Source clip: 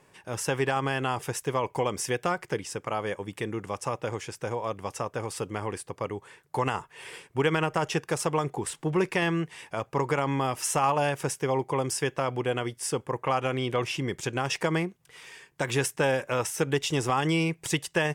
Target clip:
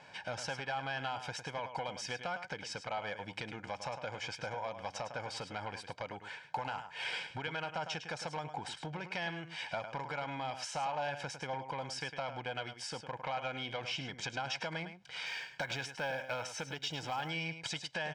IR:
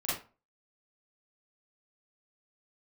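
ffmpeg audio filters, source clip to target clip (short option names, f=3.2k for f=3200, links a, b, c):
-filter_complex "[0:a]acompressor=threshold=-39dB:ratio=6,aecho=1:1:105:0.282,asoftclip=type=tanh:threshold=-33.5dB,lowpass=f=4.6k:w=0.5412,lowpass=f=4.6k:w=1.3066,aemphasis=mode=production:type=bsi,aecho=1:1:1.3:0.71,asettb=1/sr,asplit=3[a][b][c];[a]atrim=end=15.264[d];[b]atrim=start=15.26:end=17.3,asetpts=PTS-STARTPTS,afade=t=in:d=0.004:c=qsin,afade=t=out:st=2.036:d=0.004:c=qsin,acrusher=bits=8:mode=log:mix=0:aa=0.000001[e];[c]atrim=start=17.296[f];[d][e]acrossfade=d=0.004:c1=hsin:c2=qsin[g];[g][f]acrossfade=d=0.004:c1=qsin:c2=hsin,volume=4.5dB"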